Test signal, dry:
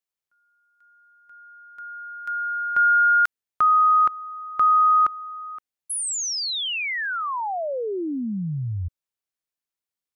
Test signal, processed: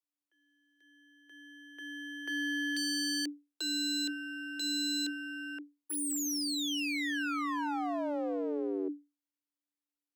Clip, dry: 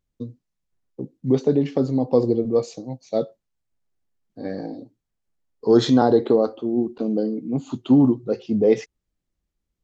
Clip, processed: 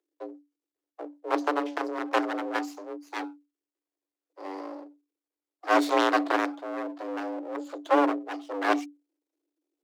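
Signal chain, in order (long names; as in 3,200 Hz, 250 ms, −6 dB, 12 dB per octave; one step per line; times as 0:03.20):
harmonic generator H 4 −32 dB, 7 −10 dB, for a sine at −3.5 dBFS
half-wave rectification
frequency shifter +290 Hz
level −4.5 dB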